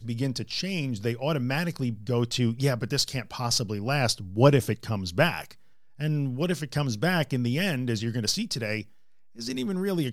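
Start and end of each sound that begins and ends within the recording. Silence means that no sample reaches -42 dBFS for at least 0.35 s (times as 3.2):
5.99–8.85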